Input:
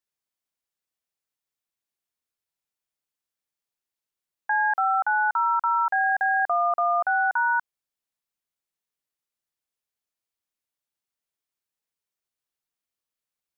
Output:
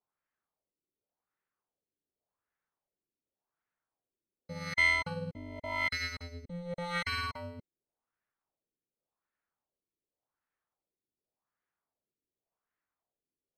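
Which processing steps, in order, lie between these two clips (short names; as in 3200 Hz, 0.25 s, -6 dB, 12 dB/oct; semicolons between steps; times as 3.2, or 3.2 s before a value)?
FFT order left unsorted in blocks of 128 samples; formant shift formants -5 st; LFO low-pass sine 0.88 Hz 340–1700 Hz; gain +2 dB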